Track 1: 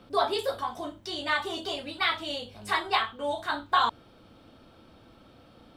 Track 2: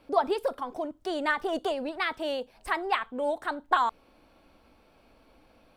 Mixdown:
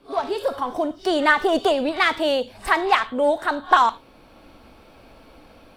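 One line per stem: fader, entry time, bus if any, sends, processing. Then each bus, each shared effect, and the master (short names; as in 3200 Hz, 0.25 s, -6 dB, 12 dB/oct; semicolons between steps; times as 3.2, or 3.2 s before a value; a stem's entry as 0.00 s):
-19.0 dB, 0.00 s, no send, phase scrambler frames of 0.2 s; sine folder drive 10 dB, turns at -11.5 dBFS; auto duck -9 dB, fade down 0.95 s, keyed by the second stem
-1.0 dB, 0.00 s, polarity flipped, no send, dry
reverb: off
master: AGC gain up to 12 dB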